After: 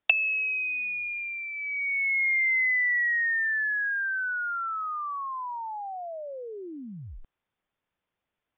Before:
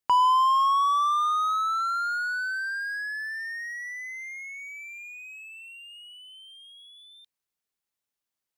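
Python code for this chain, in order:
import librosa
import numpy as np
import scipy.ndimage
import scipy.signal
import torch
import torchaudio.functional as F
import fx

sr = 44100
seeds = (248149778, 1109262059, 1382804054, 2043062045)

y = fx.env_lowpass_down(x, sr, base_hz=480.0, full_db=-22.5)
y = fx.high_shelf(y, sr, hz=2300.0, db=9.0)
y = fx.freq_invert(y, sr, carrier_hz=3600)
y = y * librosa.db_to_amplitude(4.5)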